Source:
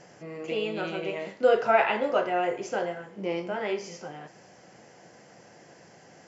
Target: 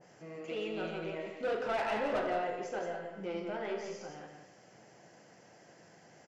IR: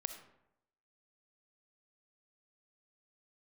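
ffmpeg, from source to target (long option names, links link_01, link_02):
-filter_complex "[0:a]asettb=1/sr,asplit=3[link_01][link_02][link_03];[link_01]atrim=end=1.924[link_04];[link_02]atrim=start=1.92:end=2.33,asetpts=PTS-STARTPTS,afade=type=in:duration=0.004:curve=qsin,afade=type=out:start_time=0.406:duration=0.004:curve=qsin,acontrast=21[link_05];[link_03]atrim=start=2.326[link_06];[link_04][link_05]acrossfade=duration=0.004:curve1=hsin:curve2=qsin[link_07];[link_07][link_06]acrossfade=duration=0.004:curve1=qsin:curve2=hsin,asoftclip=type=tanh:threshold=-22.5dB,aecho=1:1:172:0.473[link_08];[1:a]atrim=start_sample=2205[link_09];[link_08][link_09]afir=irnorm=-1:irlink=0,adynamicequalizer=threshold=0.00891:dfrequency=1900:dqfactor=0.7:tfrequency=1900:tqfactor=0.7:attack=5:release=100:ratio=0.375:range=2:mode=cutabove:tftype=highshelf,volume=-5.5dB"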